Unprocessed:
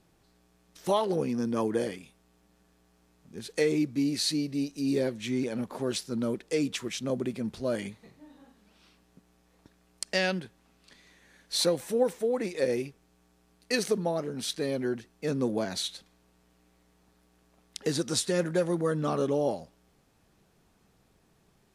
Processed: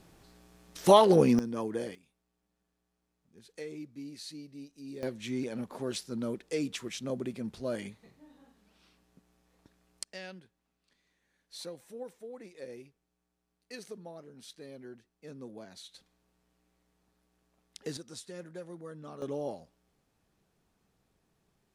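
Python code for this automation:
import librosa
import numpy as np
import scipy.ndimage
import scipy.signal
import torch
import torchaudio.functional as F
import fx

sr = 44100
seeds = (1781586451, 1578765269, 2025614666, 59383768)

y = fx.gain(x, sr, db=fx.steps((0.0, 7.0), (1.39, -6.0), (1.95, -16.0), (5.03, -4.5), (10.04, -17.0), (15.94, -9.0), (17.97, -17.0), (19.22, -8.5)))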